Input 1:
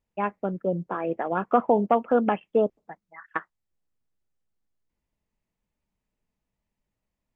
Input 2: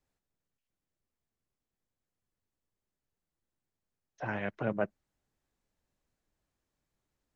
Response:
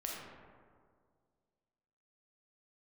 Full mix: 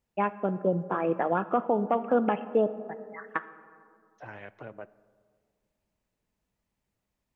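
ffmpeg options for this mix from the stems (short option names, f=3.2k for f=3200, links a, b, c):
-filter_complex "[0:a]highpass=45,volume=0dB,asplit=2[a][b];[b]volume=-12dB[c];[1:a]equalizer=f=190:t=o:w=0.77:g=-8.5,acompressor=threshold=-34dB:ratio=3,volume=-6dB,asplit=2[d][e];[e]volume=-17.5dB[f];[2:a]atrim=start_sample=2205[g];[c][f]amix=inputs=2:normalize=0[h];[h][g]afir=irnorm=-1:irlink=0[i];[a][d][i]amix=inputs=3:normalize=0,alimiter=limit=-14dB:level=0:latency=1:release=458"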